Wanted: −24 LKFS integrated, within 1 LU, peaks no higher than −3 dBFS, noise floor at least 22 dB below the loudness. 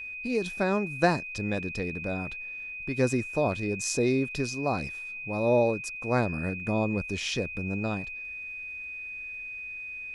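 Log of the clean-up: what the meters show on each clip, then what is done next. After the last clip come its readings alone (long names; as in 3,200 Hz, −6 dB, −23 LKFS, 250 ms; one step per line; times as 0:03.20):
crackle rate 17 per second; interfering tone 2,500 Hz; level of the tone −36 dBFS; integrated loudness −29.5 LKFS; sample peak −9.5 dBFS; target loudness −24.0 LKFS
→ click removal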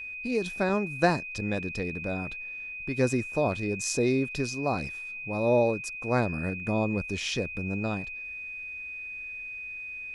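crackle rate 0 per second; interfering tone 2,500 Hz; level of the tone −36 dBFS
→ notch filter 2,500 Hz, Q 30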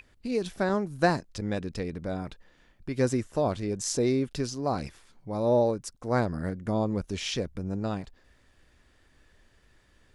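interfering tone none found; integrated loudness −29.5 LKFS; sample peak −10.0 dBFS; target loudness −24.0 LKFS
→ level +5.5 dB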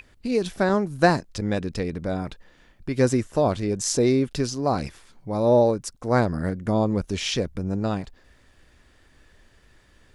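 integrated loudness −24.0 LKFS; sample peak −4.5 dBFS; background noise floor −58 dBFS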